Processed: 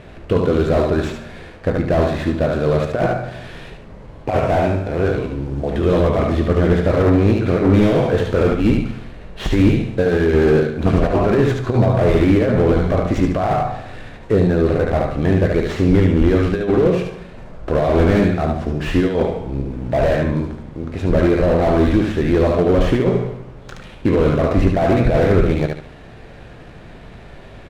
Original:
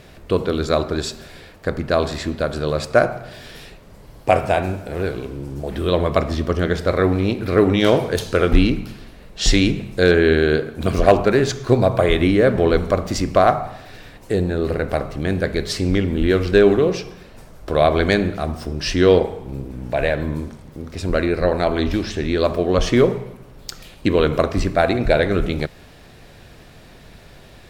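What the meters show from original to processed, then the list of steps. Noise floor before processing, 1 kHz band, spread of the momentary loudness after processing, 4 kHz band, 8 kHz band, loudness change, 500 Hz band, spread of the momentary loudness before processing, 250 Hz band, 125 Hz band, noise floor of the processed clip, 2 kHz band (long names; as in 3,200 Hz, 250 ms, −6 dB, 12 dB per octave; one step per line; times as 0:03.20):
−44 dBFS, 0.0 dB, 11 LU, −6.5 dB, can't be measured, +2.0 dB, +1.0 dB, 14 LU, +3.5 dB, +5.5 dB, −39 dBFS, −2.5 dB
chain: running median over 9 samples
high-frequency loss of the air 60 metres
compressor whose output falls as the input rises −16 dBFS, ratio −0.5
double-tracking delay 18 ms −13 dB
on a send: repeating echo 73 ms, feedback 30%, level −6 dB
on the sum: slew-rate limiting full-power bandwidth 91 Hz
level +3.5 dB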